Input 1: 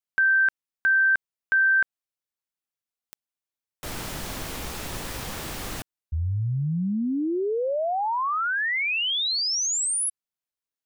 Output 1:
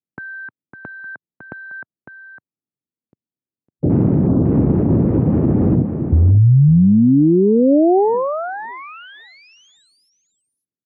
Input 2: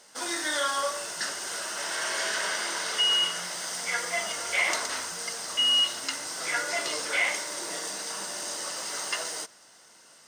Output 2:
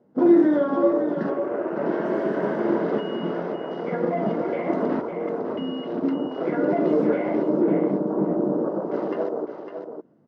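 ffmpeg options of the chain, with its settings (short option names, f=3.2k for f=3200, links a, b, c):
-af "afwtdn=0.0141,acompressor=threshold=-26dB:ratio=6:attack=0.99:release=289:knee=1:detection=peak,asuperpass=centerf=190:order=4:qfactor=0.8,aecho=1:1:555:0.398,alimiter=level_in=34dB:limit=-1dB:release=50:level=0:latency=1,volume=-5.5dB" -ar 48000 -c:a aac -b:a 96k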